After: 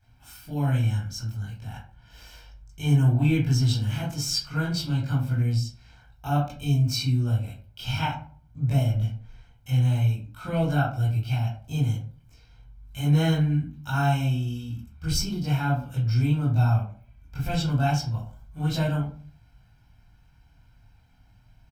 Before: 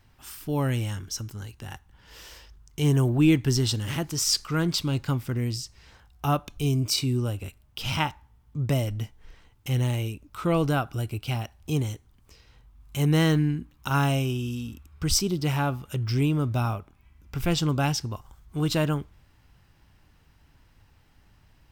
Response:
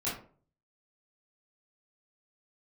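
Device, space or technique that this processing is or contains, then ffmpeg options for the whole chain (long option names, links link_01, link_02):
microphone above a desk: -filter_complex "[0:a]aecho=1:1:1.3:0.68[link_01];[1:a]atrim=start_sample=2205[link_02];[link_01][link_02]afir=irnorm=-1:irlink=0,volume=-9dB"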